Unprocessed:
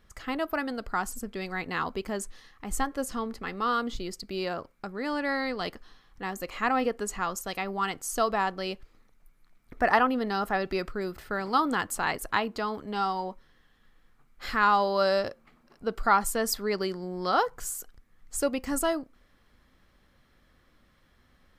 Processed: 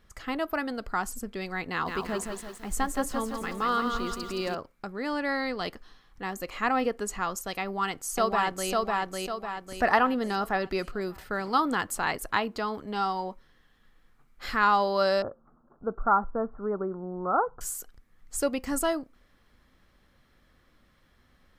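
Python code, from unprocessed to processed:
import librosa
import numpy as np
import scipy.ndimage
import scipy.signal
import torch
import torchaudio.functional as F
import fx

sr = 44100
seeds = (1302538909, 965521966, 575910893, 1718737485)

y = fx.echo_crushed(x, sr, ms=169, feedback_pct=55, bits=9, wet_db=-5.0, at=(1.69, 4.55))
y = fx.echo_throw(y, sr, start_s=7.62, length_s=1.09, ms=550, feedback_pct=45, wet_db=-1.5)
y = fx.cheby1_lowpass(y, sr, hz=1400.0, order=5, at=(15.22, 17.61))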